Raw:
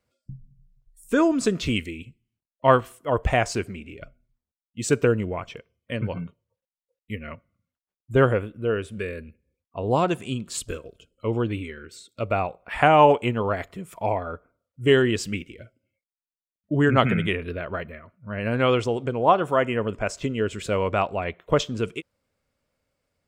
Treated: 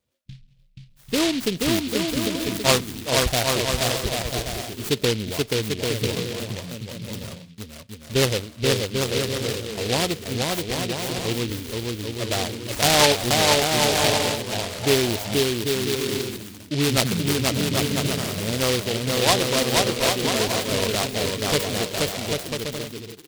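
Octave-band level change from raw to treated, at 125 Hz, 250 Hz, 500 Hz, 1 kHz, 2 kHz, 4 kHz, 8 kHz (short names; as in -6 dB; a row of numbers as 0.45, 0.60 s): +1.5, +1.0, 0.0, -2.5, +3.0, +13.5, +14.0 dB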